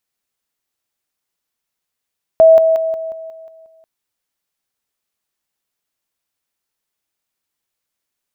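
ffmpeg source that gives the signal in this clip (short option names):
-f lavfi -i "aevalsrc='pow(10,(-3.5-6*floor(t/0.18))/20)*sin(2*PI*648*t)':d=1.44:s=44100"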